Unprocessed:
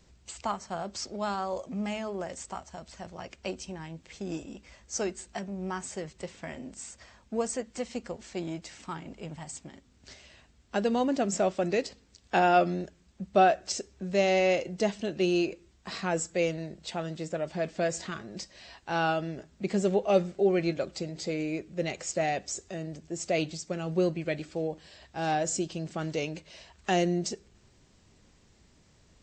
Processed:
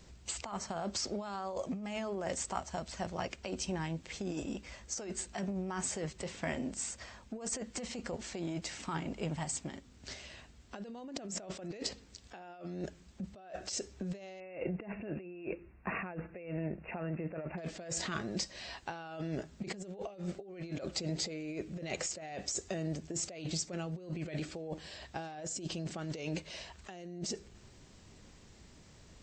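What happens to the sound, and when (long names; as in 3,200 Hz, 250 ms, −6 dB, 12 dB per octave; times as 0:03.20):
0:14.40–0:17.58: linear-phase brick-wall low-pass 2,800 Hz
whole clip: compressor whose output falls as the input rises −38 dBFS, ratio −1; level −2.5 dB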